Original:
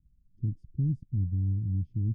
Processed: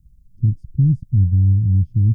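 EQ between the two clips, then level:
bass and treble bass +12 dB, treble +12 dB
+2.5 dB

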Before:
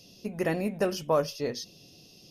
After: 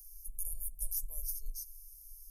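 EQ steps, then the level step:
inverse Chebyshev band-stop filter 110–3,500 Hz, stop band 60 dB
low-shelf EQ 440 Hz +11 dB
phaser with its sweep stopped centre 760 Hz, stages 4
+16.0 dB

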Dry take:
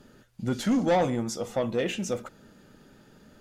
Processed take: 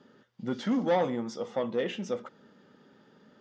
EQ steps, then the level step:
loudspeaker in its box 220–4,700 Hz, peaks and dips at 320 Hz −5 dB, 670 Hz −6 dB, 1,500 Hz −4 dB, 2,500 Hz −8 dB, 4,200 Hz −7 dB
0.0 dB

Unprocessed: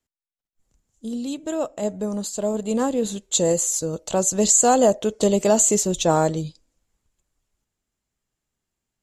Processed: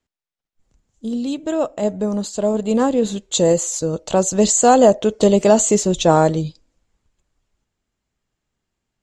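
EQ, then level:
high-frequency loss of the air 76 metres
+5.5 dB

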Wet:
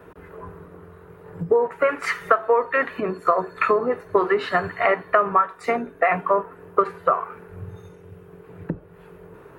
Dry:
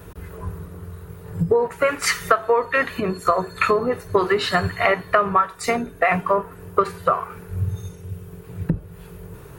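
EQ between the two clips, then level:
three-way crossover with the lows and the highs turned down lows −15 dB, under 210 Hz, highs −17 dB, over 2,500 Hz
0.0 dB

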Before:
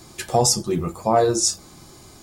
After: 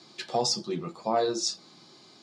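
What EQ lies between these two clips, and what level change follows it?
high-pass filter 160 Hz 24 dB per octave
low-pass with resonance 4,300 Hz, resonance Q 2.7
−8.5 dB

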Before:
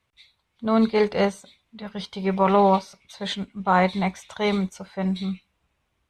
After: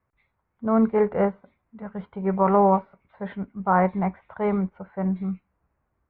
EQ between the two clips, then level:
low-pass filter 1,700 Hz 24 dB per octave
high-frequency loss of the air 150 metres
0.0 dB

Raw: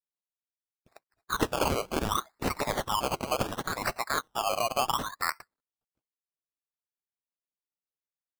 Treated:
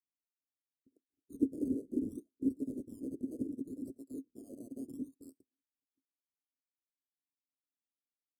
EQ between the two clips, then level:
formant filter i
Chebyshev band-stop filter 440–9,100 Hz, order 3
parametric band 180 Hz −6.5 dB 0.47 octaves
+9.0 dB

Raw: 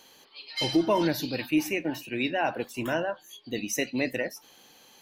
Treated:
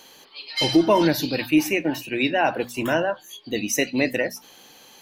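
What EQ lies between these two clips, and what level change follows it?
mains-hum notches 60/120/180/240 Hz
+6.5 dB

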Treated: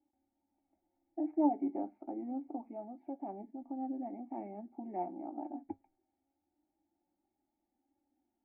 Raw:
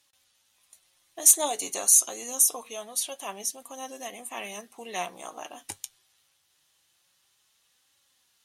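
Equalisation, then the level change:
formant resonators in series u
phaser with its sweep stopped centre 690 Hz, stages 8
+13.5 dB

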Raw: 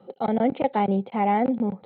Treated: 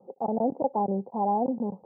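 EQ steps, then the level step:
Chebyshev low-pass filter 1,000 Hz, order 5
low-shelf EQ 140 Hz −10 dB
−2.0 dB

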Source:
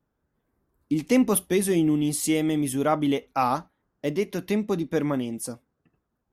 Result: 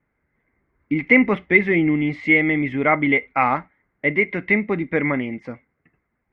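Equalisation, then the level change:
low-pass with resonance 2,100 Hz, resonance Q 16
high-frequency loss of the air 160 metres
+3.0 dB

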